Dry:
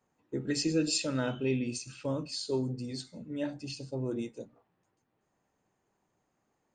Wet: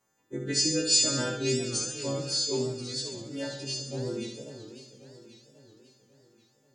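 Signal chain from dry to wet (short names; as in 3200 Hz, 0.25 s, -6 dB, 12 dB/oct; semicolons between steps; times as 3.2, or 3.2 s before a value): frequency quantiser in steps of 2 st; flutter echo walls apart 11.4 m, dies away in 0.75 s; warbling echo 0.543 s, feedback 53%, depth 201 cents, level -13 dB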